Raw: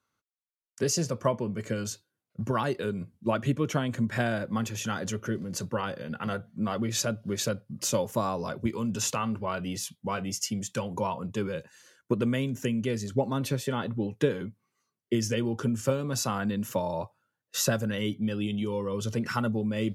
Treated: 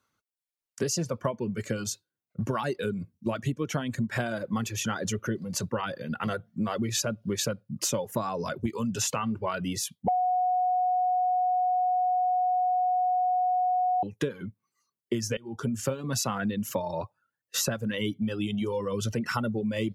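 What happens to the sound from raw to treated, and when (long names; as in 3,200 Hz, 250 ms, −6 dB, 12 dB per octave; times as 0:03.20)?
0:03.12–0:03.62: parametric band 1,100 Hz −4.5 dB 2.3 octaves
0:10.08–0:14.03: beep over 731 Hz −13 dBFS
0:15.37–0:15.82: fade in, from −18 dB
whole clip: reverb reduction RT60 0.76 s; downward compressor 6 to 1, threshold −29 dBFS; level +4 dB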